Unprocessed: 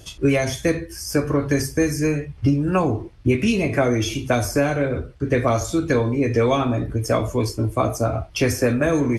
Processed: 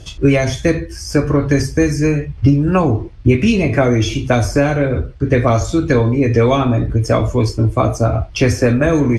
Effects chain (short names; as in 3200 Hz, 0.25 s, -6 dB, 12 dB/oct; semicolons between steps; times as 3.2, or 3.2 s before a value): LPF 6900 Hz 12 dB/oct; low shelf 110 Hz +8.5 dB; gain +4.5 dB